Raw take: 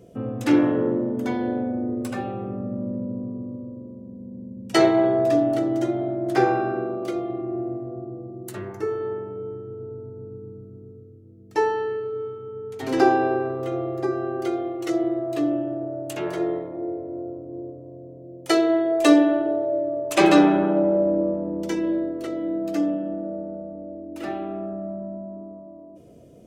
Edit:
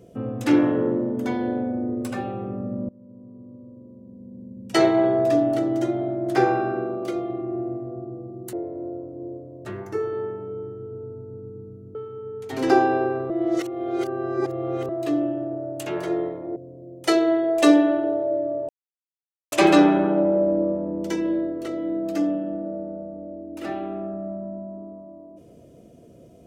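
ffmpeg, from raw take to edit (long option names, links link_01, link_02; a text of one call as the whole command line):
ffmpeg -i in.wav -filter_complex "[0:a]asplit=9[link_01][link_02][link_03][link_04][link_05][link_06][link_07][link_08][link_09];[link_01]atrim=end=2.89,asetpts=PTS-STARTPTS,afade=type=out:start_time=2.886:duration=0.004:curve=hsin:silence=0.0630957[link_10];[link_02]atrim=start=2.89:end=8.532,asetpts=PTS-STARTPTS,afade=type=in:duration=2.17:silence=0.0630957[link_11];[link_03]atrim=start=16.858:end=17.982[link_12];[link_04]atrim=start=8.528:end=10.832[link_13];[link_05]atrim=start=12.248:end=13.602[link_14];[link_06]atrim=start=13.598:end=15.192,asetpts=PTS-STARTPTS,areverse[link_15];[link_07]atrim=start=15.188:end=16.862[link_16];[link_08]atrim=start=17.978:end=20.11,asetpts=PTS-STARTPTS,afade=type=out:start_time=2.128:duration=0.004:curve=hsin,apad=pad_dur=0.83[link_17];[link_09]atrim=start=20.11,asetpts=PTS-STARTPTS,afade=type=in:duration=0.004:curve=hsin[link_18];[link_10][link_11]concat=n=2:v=0:a=1[link_19];[link_19][link_12]acrossfade=duration=0.004:curve1=hsin:curve2=hsin[link_20];[link_20][link_13]acrossfade=duration=0.004:curve1=hsin:curve2=hsin[link_21];[link_21][link_14]acrossfade=duration=0.004:curve1=hsin:curve2=hsin[link_22];[link_22][link_15]acrossfade=duration=0.004:curve1=hsin:curve2=hsin[link_23];[link_23][link_16]acrossfade=duration=0.004:curve1=hsin:curve2=hsin[link_24];[link_17][link_18]concat=n=2:v=0:a=1[link_25];[link_24][link_25]acrossfade=duration=0.004:curve1=hsin:curve2=hsin" out.wav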